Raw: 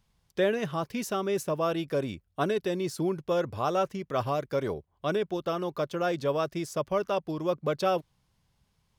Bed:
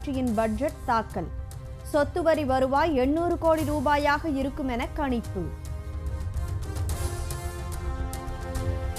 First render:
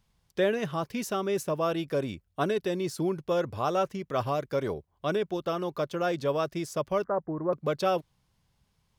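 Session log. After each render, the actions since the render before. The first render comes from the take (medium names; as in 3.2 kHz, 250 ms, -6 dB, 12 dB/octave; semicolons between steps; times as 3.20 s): 7.04–7.53 s: steep low-pass 1.9 kHz 72 dB/octave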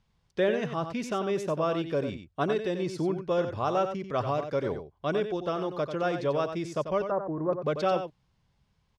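distance through air 80 m; on a send: delay 92 ms -8.5 dB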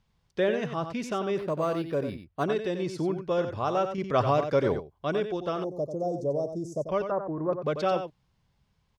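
1.38–2.44 s: decimation joined by straight lines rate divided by 6×; 3.98–4.80 s: gain +5 dB; 5.64–6.89 s: Chebyshev band-stop 680–6200 Hz, order 3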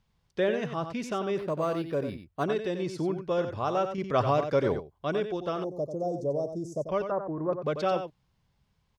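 trim -1 dB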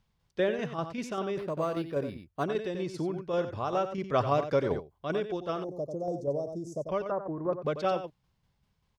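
tremolo saw down 5.1 Hz, depth 45%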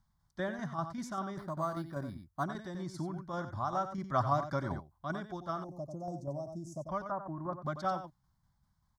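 static phaser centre 1.1 kHz, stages 4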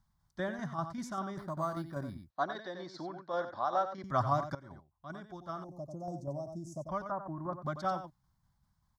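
2.30–4.04 s: cabinet simulation 330–5400 Hz, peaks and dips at 500 Hz +9 dB, 710 Hz +4 dB, 1.7 kHz +5 dB, 4 kHz +9 dB; 4.55–6.14 s: fade in, from -19 dB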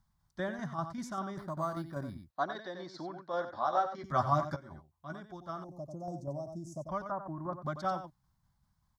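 3.53–5.14 s: doubling 13 ms -4.5 dB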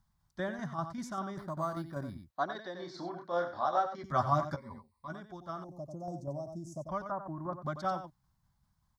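2.79–3.68 s: doubling 29 ms -4.5 dB; 4.57–5.08 s: rippled EQ curve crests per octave 0.93, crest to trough 17 dB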